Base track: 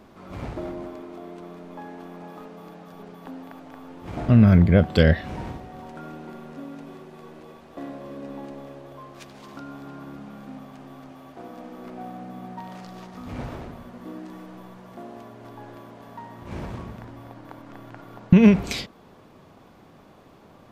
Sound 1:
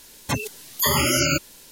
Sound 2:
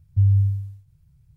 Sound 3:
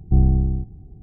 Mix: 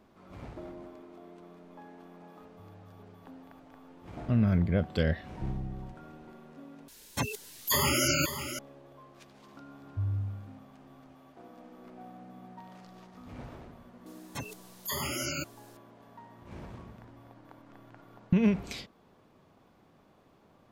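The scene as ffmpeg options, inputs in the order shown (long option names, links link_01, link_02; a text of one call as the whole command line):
ffmpeg -i bed.wav -i cue0.wav -i cue1.wav -i cue2.wav -filter_complex "[2:a]asplit=2[link_01][link_02];[1:a]asplit=2[link_03][link_04];[0:a]volume=-11dB[link_05];[link_01]acompressor=threshold=-43dB:ratio=6:attack=3.2:release=140:knee=1:detection=peak[link_06];[3:a]equalizer=frequency=63:width=1.1:gain=-10[link_07];[link_03]aecho=1:1:539:0.299[link_08];[link_05]asplit=2[link_09][link_10];[link_09]atrim=end=6.884[link_11];[link_08]atrim=end=1.71,asetpts=PTS-STARTPTS,volume=-6.5dB[link_12];[link_10]atrim=start=8.586[link_13];[link_06]atrim=end=1.36,asetpts=PTS-STARTPTS,volume=-13dB,afade=type=in:duration=0.004:curve=hsin,afade=type=out:start_time=1.356:duration=0.004:curve=hsin,adelay=2430[link_14];[link_07]atrim=end=1.02,asetpts=PTS-STARTPTS,volume=-15dB,afade=type=in:duration=0.004:curve=hsin,afade=type=out:start_time=1.016:duration=0.004:curve=hsin,adelay=5300[link_15];[link_02]atrim=end=1.36,asetpts=PTS-STARTPTS,volume=-14.5dB,afade=type=in:duration=0.004:curve=hsin,afade=type=out:start_time=1.356:duration=0.004:curve=hsin,adelay=9800[link_16];[link_04]atrim=end=1.71,asetpts=PTS-STARTPTS,volume=-14dB,afade=type=in:duration=0.004:curve=hsin,afade=type=out:start_time=1.706:duration=0.004:curve=hsin,adelay=14060[link_17];[link_11][link_12]acrossfade=duration=0.004:curve1=hsin:curve2=hsin[link_18];[link_18][link_13]acrossfade=duration=0.004:curve1=hsin:curve2=hsin[link_19];[link_19][link_14][link_15][link_16][link_17]amix=inputs=5:normalize=0" out.wav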